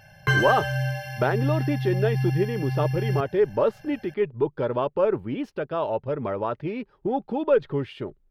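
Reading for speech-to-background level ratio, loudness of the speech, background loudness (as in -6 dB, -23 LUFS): 0.5 dB, -26.0 LUFS, -26.5 LUFS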